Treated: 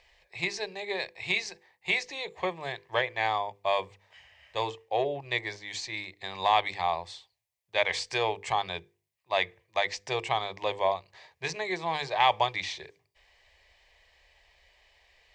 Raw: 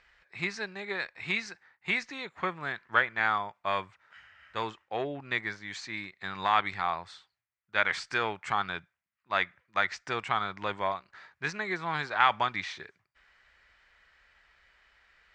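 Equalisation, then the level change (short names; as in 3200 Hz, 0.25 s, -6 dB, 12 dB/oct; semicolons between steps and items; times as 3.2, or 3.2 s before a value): notches 50/100/150/200/250/300/350/400/450/500 Hz; notches 50/100/150/200 Hz; fixed phaser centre 580 Hz, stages 4; +7.0 dB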